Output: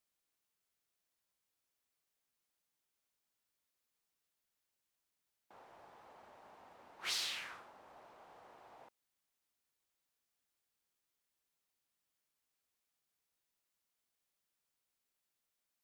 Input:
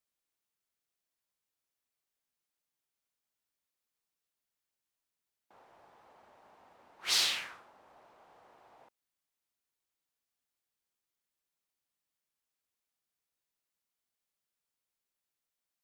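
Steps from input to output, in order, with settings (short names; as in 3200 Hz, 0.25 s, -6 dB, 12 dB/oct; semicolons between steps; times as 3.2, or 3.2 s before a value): compressor 3:1, threshold -41 dBFS, peak gain reduction 12.5 dB; gain +1.5 dB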